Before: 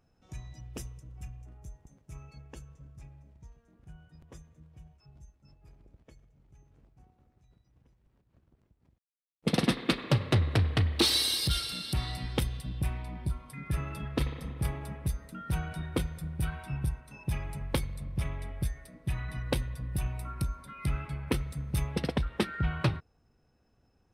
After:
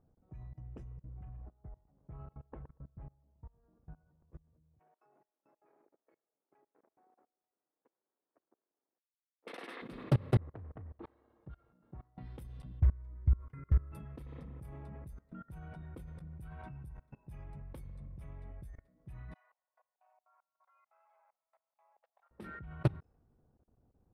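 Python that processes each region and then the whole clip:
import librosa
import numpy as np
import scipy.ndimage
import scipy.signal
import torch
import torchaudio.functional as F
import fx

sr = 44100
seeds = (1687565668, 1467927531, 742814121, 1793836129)

y = fx.chain(x, sr, fx.peak_eq(hz=1100.0, db=8.5, octaves=2.3),
    fx.echo_feedback(ms=118, feedback_pct=24, wet_db=-13.0),
    fx.resample_linear(factor=8), at=(1.22, 4.26))
y = fx.chain(y, sr, fx.highpass(hz=330.0, slope=24),
    fx.peak_eq(hz=2000.0, db=13.5, octaves=2.5), at=(4.79, 9.82))
y = fx.chain(y, sr, fx.lowpass(hz=1200.0, slope=12),
    fx.low_shelf(hz=410.0, db=-8.0),
    fx.level_steps(step_db=20), at=(10.37, 12.18))
y = fx.chain(y, sr, fx.peak_eq(hz=74.0, db=13.0, octaves=1.1),
    fx.fixed_phaser(hz=770.0, stages=6),
    fx.resample_linear(factor=4), at=(12.8, 13.92))
y = fx.chain(y, sr, fx.steep_highpass(hz=690.0, slope=48),
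    fx.peak_eq(hz=1500.0, db=-10.0, octaves=1.7),
    fx.auto_swell(attack_ms=264.0), at=(19.34, 22.31))
y = fx.env_lowpass(y, sr, base_hz=1100.0, full_db=-26.5)
y = fx.peak_eq(y, sr, hz=4300.0, db=-14.0, octaves=2.6)
y = fx.level_steps(y, sr, step_db=24)
y = y * librosa.db_to_amplitude(1.5)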